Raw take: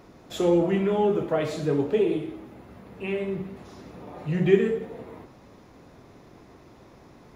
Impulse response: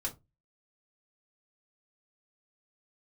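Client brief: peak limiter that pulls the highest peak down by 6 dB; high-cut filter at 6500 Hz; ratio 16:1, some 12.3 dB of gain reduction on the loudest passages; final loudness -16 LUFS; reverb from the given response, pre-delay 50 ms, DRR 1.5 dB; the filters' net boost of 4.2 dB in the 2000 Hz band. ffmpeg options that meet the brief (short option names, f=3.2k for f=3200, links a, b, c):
-filter_complex "[0:a]lowpass=6.5k,equalizer=f=2k:t=o:g=5,acompressor=threshold=-24dB:ratio=16,alimiter=limit=-22.5dB:level=0:latency=1,asplit=2[a][b];[1:a]atrim=start_sample=2205,adelay=50[c];[b][c]afir=irnorm=-1:irlink=0,volume=-3dB[d];[a][d]amix=inputs=2:normalize=0,volume=15dB"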